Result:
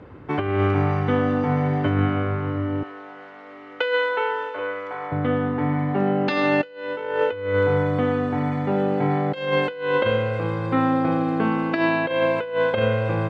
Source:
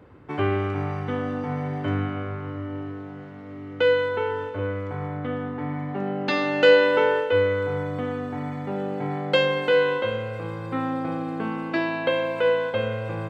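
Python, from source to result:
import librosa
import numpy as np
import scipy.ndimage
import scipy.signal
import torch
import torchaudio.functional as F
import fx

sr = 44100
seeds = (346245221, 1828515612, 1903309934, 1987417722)

y = fx.highpass(x, sr, hz=660.0, slope=12, at=(2.83, 5.12))
y = fx.over_compress(y, sr, threshold_db=-25.0, ratio=-0.5)
y = fx.air_absorb(y, sr, metres=81.0)
y = F.gain(torch.from_numpy(y), 5.0).numpy()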